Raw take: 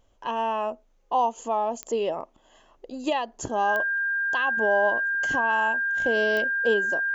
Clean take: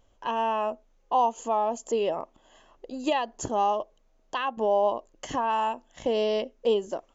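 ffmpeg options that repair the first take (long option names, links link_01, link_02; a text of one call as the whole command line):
ffmpeg -i in.wav -af "adeclick=threshold=4,bandreject=frequency=1600:width=30" out.wav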